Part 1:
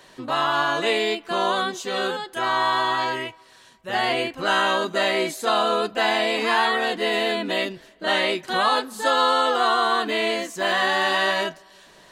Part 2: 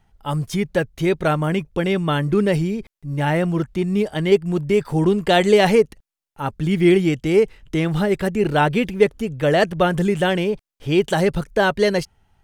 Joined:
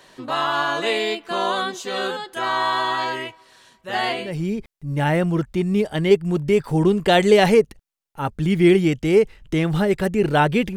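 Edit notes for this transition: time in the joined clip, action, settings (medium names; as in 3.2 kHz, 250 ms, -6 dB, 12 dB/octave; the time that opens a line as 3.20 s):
part 1
4.29 s: go over to part 2 from 2.50 s, crossfade 0.42 s quadratic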